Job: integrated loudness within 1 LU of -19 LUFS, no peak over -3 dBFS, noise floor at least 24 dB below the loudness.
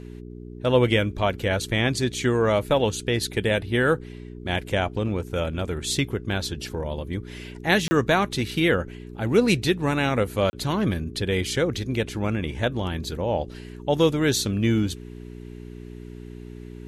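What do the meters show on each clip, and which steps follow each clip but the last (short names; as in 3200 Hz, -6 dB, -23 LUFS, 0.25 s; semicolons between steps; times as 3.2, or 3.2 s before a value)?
dropouts 2; longest dropout 30 ms; hum 60 Hz; harmonics up to 420 Hz; hum level -36 dBFS; loudness -24.0 LUFS; peak -6.5 dBFS; loudness target -19.0 LUFS
-> interpolate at 7.88/10.5, 30 ms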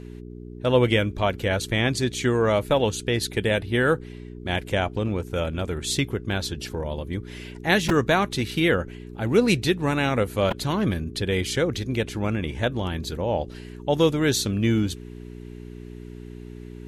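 dropouts 0; hum 60 Hz; harmonics up to 420 Hz; hum level -36 dBFS
-> de-hum 60 Hz, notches 7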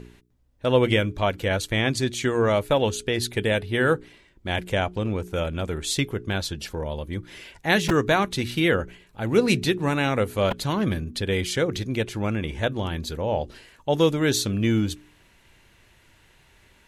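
hum none; loudness -24.5 LUFS; peak -6.5 dBFS; loudness target -19.0 LUFS
-> gain +5.5 dB; limiter -3 dBFS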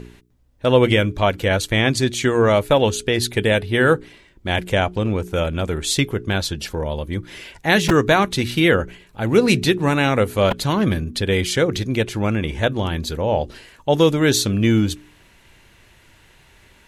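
loudness -19.0 LUFS; peak -3.0 dBFS; noise floor -52 dBFS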